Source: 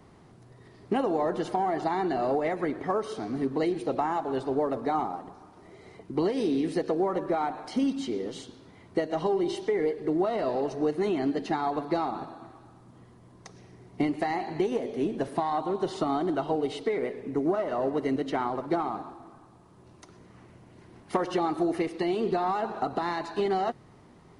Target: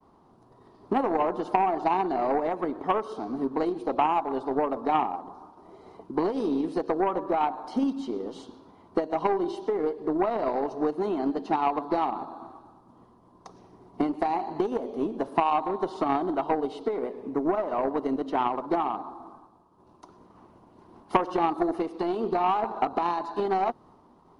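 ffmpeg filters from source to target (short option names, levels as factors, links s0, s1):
-filter_complex "[0:a]agate=range=0.0224:threshold=0.00355:ratio=3:detection=peak,equalizer=f=125:t=o:w=1:g=-8,equalizer=f=250:t=o:w=1:g=4,equalizer=f=1000:t=o:w=1:g=11,equalizer=f=2000:t=o:w=1:g=-11,equalizer=f=8000:t=o:w=1:g=-8,asplit=2[s0][s1];[s1]acompressor=threshold=0.0178:ratio=6,volume=0.841[s2];[s0][s2]amix=inputs=2:normalize=0,aeval=exprs='0.376*(cos(1*acos(clip(val(0)/0.376,-1,1)))-cos(1*PI/2))+0.0119*(cos(2*acos(clip(val(0)/0.376,-1,1)))-cos(2*PI/2))+0.075*(cos(3*acos(clip(val(0)/0.376,-1,1)))-cos(3*PI/2))':c=same,volume=1.26"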